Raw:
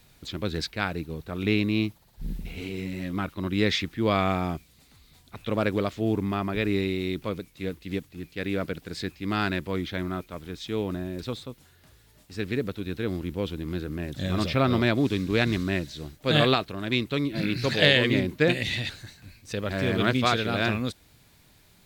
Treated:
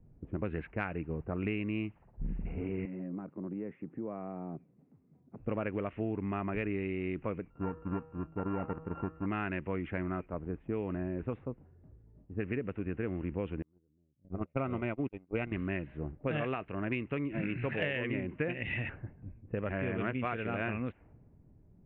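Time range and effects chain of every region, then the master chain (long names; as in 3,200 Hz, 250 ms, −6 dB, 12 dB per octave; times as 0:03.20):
0:02.85–0:05.40: high-pass filter 140 Hz 24 dB per octave + downward compressor 4 to 1, threshold −38 dBFS
0:07.50–0:09.26: samples sorted by size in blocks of 32 samples + hum removal 160.1 Hz, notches 28 + treble cut that deepens with the level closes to 1,200 Hz, closed at −28.5 dBFS
0:13.62–0:15.52: noise gate −24 dBFS, range −41 dB + Butterworth band-reject 1,700 Hz, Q 7.1 + high-shelf EQ 5,700 Hz −5.5 dB
whole clip: Chebyshev low-pass filter 2,800 Hz, order 6; low-pass that shuts in the quiet parts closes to 310 Hz, open at −22.5 dBFS; downward compressor 6 to 1, threshold −34 dBFS; level +2.5 dB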